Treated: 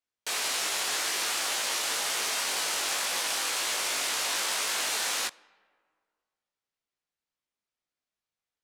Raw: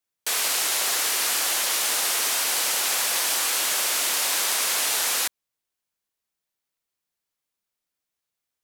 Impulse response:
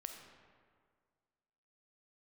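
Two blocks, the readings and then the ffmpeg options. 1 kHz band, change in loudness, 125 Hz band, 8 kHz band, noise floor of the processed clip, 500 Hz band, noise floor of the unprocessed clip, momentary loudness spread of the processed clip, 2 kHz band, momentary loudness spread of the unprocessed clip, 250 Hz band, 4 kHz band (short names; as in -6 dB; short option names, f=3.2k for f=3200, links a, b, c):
-3.5 dB, -6.0 dB, n/a, -7.0 dB, under -85 dBFS, -3.5 dB, -85 dBFS, 1 LU, -3.5 dB, 1 LU, -3.0 dB, -4.0 dB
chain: -filter_complex "[0:a]asplit=2[a][b];[1:a]atrim=start_sample=2205[c];[b][c]afir=irnorm=-1:irlink=0,volume=-12.5dB[d];[a][d]amix=inputs=2:normalize=0,flanger=delay=18:depth=2.3:speed=1.9,adynamicsmooth=sensitivity=3.5:basefreq=7.2k,volume=-1.5dB"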